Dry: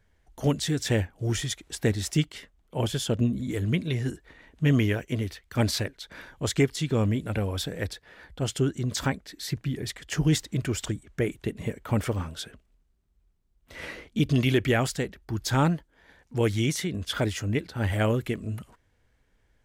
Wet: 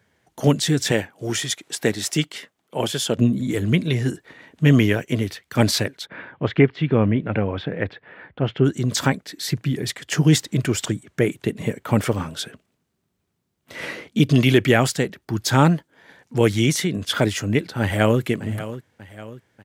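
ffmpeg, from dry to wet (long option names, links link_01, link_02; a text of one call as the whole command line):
ffmpeg -i in.wav -filter_complex "[0:a]asettb=1/sr,asplit=3[link_01][link_02][link_03];[link_01]atrim=end=0.914[link_04];[link_02]atrim=start=0.91:end=3.17,asetpts=PTS-STARTPTS,afade=type=in:duration=0.004:curve=qsin,afade=type=out:start_time=2.256:duration=0.004:curve=qsin,highpass=frequency=310:poles=1[link_05];[link_03]atrim=start=3.166[link_06];[link_04][link_05]acrossfade=duration=0.004:curve1=hsin:curve2=qsin[link_07];[link_07][link_06]acrossfade=duration=0.004:curve1=qsin:curve2=hsin,asplit=3[link_08][link_09][link_10];[link_08]afade=type=out:start_time=6.05:duration=0.02[link_11];[link_09]lowpass=frequency=2700:width=0.5412,lowpass=frequency=2700:width=1.3066,afade=type=in:start_time=6.05:duration=0.02,afade=type=out:start_time=8.64:duration=0.02[link_12];[link_10]afade=type=in:start_time=8.64:duration=0.02[link_13];[link_11][link_12][link_13]amix=inputs=3:normalize=0,asplit=2[link_14][link_15];[link_15]afade=type=in:start_time=17.81:duration=0.01,afade=type=out:start_time=18.21:duration=0.01,aecho=0:1:590|1180|1770|2360|2950:0.199526|0.0997631|0.0498816|0.0249408|0.0124704[link_16];[link_14][link_16]amix=inputs=2:normalize=0,highpass=frequency=110:width=0.5412,highpass=frequency=110:width=1.3066,volume=7.5dB" out.wav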